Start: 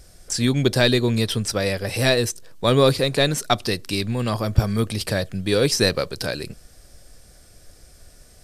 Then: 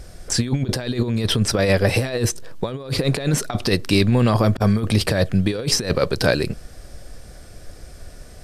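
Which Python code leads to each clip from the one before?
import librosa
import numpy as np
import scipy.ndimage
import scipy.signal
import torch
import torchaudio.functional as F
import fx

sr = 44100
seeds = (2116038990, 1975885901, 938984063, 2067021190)

y = fx.high_shelf(x, sr, hz=3600.0, db=-9.5)
y = fx.over_compress(y, sr, threshold_db=-24.0, ratio=-0.5)
y = y * librosa.db_to_amplitude(6.0)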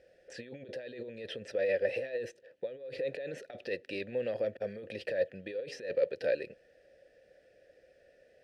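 y = fx.vowel_filter(x, sr, vowel='e')
y = fx.peak_eq(y, sr, hz=7900.0, db=-2.5, octaves=0.28)
y = y * librosa.db_to_amplitude(-5.0)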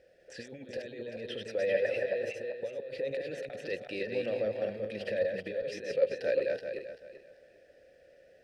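y = fx.reverse_delay_fb(x, sr, ms=194, feedback_pct=49, wet_db=-2.5)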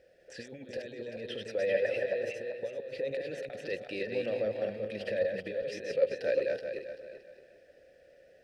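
y = x + 10.0 ** (-19.5 / 20.0) * np.pad(x, (int(619 * sr / 1000.0), 0))[:len(x)]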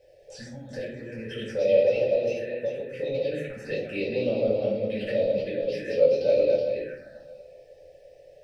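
y = fx.env_phaser(x, sr, low_hz=220.0, high_hz=1700.0, full_db=-31.5)
y = fx.room_shoebox(y, sr, seeds[0], volume_m3=420.0, walls='furnished', distance_m=5.2)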